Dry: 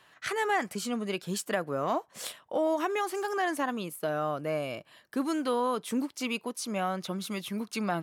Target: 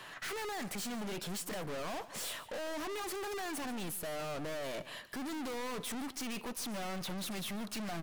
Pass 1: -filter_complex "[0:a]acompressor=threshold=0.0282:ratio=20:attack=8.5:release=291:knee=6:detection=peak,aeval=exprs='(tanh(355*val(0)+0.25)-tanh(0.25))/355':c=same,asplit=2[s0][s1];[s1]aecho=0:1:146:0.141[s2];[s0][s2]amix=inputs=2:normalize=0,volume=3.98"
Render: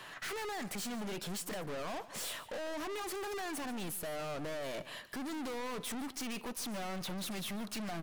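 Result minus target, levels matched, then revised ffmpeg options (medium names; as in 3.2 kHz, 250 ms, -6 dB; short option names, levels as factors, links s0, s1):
compression: peak gain reduction +7 dB
-filter_complex "[0:a]acompressor=threshold=0.0708:ratio=20:attack=8.5:release=291:knee=6:detection=peak,aeval=exprs='(tanh(355*val(0)+0.25)-tanh(0.25))/355':c=same,asplit=2[s0][s1];[s1]aecho=0:1:146:0.141[s2];[s0][s2]amix=inputs=2:normalize=0,volume=3.98"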